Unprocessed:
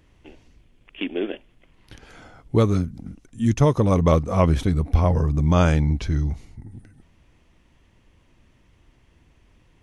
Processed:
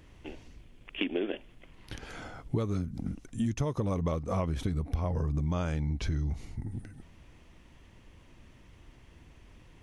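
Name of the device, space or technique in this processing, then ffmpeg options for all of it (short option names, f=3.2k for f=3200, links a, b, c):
serial compression, leveller first: -af "acompressor=threshold=-25dB:ratio=1.5,acompressor=threshold=-30dB:ratio=6,volume=2.5dB"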